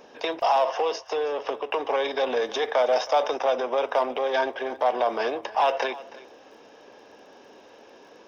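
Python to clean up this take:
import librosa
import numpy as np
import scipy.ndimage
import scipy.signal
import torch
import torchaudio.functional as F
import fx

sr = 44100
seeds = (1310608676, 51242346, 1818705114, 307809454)

y = fx.fix_declick_ar(x, sr, threshold=6.5)
y = fx.fix_echo_inverse(y, sr, delay_ms=320, level_db=-18.5)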